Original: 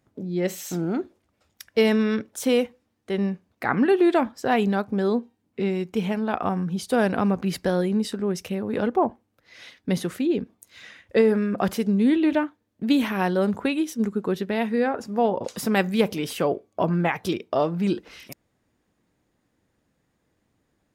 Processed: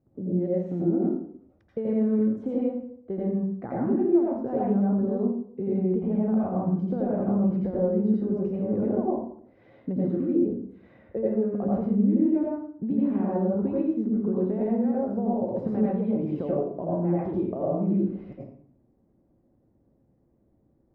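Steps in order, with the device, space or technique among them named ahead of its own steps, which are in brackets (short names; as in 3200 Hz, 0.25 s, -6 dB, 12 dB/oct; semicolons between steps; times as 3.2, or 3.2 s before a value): television next door (compressor, threshold -27 dBFS, peak gain reduction 12.5 dB; LPF 500 Hz 12 dB/oct; reverb RT60 0.60 s, pre-delay 80 ms, DRR -6 dB)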